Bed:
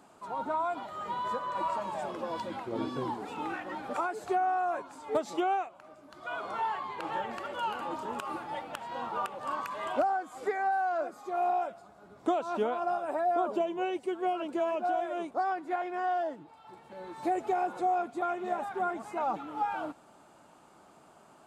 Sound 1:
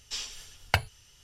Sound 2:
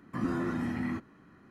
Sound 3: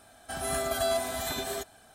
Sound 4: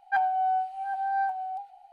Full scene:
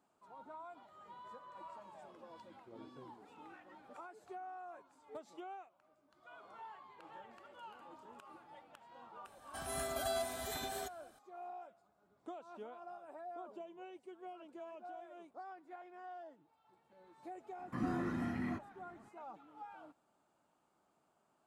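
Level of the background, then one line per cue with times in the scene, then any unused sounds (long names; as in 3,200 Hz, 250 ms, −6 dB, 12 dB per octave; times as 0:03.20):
bed −19.5 dB
0:09.25: mix in 3 −9.5 dB
0:17.59: mix in 2 −6 dB
not used: 1, 4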